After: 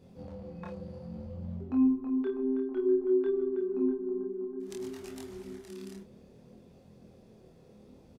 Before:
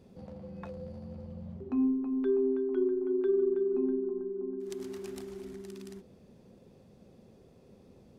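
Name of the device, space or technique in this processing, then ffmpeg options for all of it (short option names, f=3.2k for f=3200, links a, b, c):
double-tracked vocal: -filter_complex "[0:a]asplit=2[a][b];[b]adelay=24,volume=-4.5dB[c];[a][c]amix=inputs=2:normalize=0,flanger=delay=22.5:depth=7.8:speed=0.59,volume=3dB"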